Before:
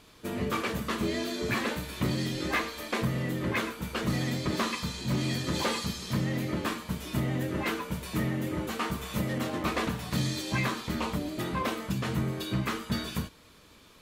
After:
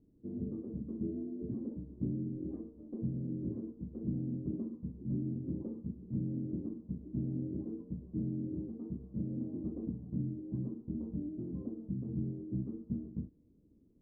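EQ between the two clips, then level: ladder low-pass 360 Hz, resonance 40%; air absorption 470 m; 0.0 dB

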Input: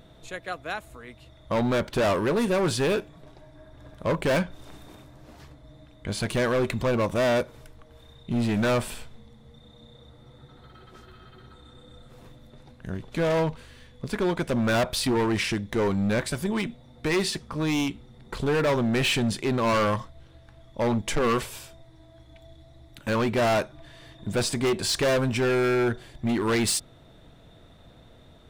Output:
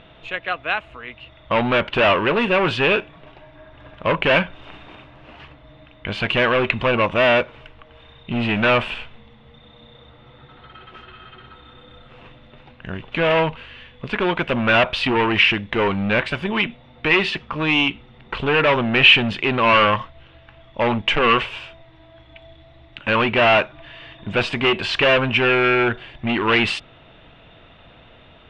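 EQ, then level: synth low-pass 2800 Hz, resonance Q 5.4; bell 1100 Hz +7 dB 2 oct; +1.5 dB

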